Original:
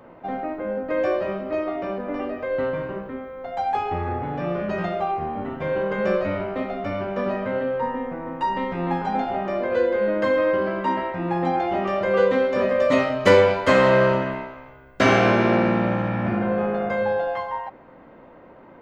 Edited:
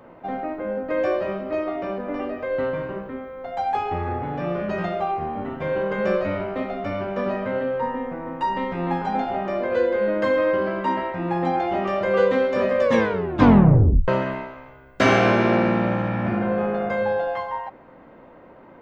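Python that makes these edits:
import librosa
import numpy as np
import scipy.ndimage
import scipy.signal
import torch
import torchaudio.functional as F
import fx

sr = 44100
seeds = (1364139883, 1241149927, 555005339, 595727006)

y = fx.edit(x, sr, fx.tape_stop(start_s=12.81, length_s=1.27), tone=tone)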